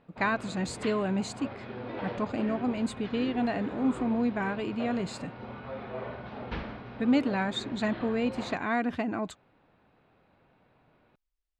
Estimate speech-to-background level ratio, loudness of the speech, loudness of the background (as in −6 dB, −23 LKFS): 10.0 dB, −30.5 LKFS, −40.5 LKFS